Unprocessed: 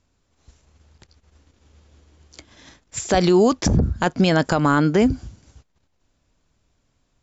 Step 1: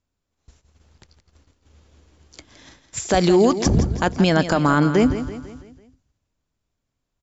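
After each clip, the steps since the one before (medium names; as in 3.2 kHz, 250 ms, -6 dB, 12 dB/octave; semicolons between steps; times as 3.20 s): gate -55 dBFS, range -12 dB; on a send: feedback delay 166 ms, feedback 48%, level -11.5 dB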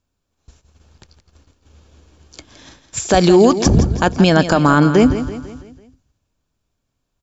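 band-stop 2 kHz, Q 9.6; trim +5 dB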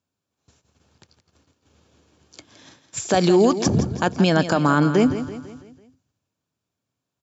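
high-pass 98 Hz 24 dB/octave; trim -5.5 dB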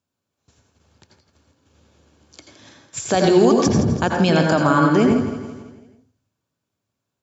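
reverberation RT60 0.40 s, pre-delay 77 ms, DRR 1.5 dB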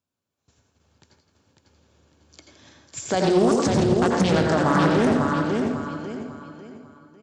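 feedback delay 548 ms, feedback 35%, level -4 dB; loudspeaker Doppler distortion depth 0.47 ms; trim -4.5 dB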